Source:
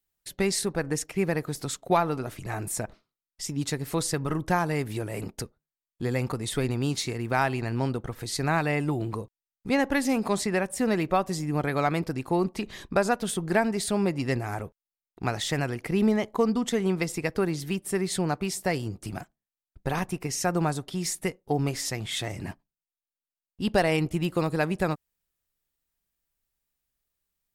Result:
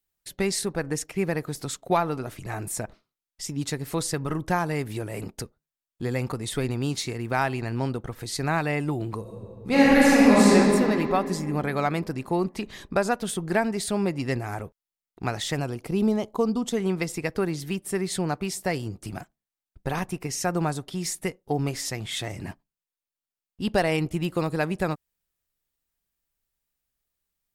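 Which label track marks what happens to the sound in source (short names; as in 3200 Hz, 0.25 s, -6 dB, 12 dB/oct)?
9.210000	10.540000	reverb throw, RT60 2.9 s, DRR -9 dB
15.550000	16.770000	bell 1900 Hz -11.5 dB 0.66 oct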